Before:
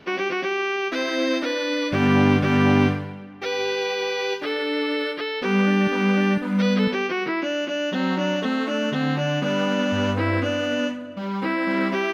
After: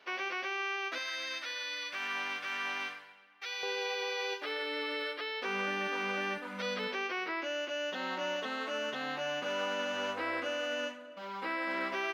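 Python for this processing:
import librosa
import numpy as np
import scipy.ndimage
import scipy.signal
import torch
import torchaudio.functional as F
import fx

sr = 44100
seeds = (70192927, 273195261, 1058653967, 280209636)

y = fx.highpass(x, sr, hz=fx.steps((0.0, 680.0), (0.98, 1400.0), (3.63, 540.0)), slope=12)
y = F.gain(torch.from_numpy(y), -8.0).numpy()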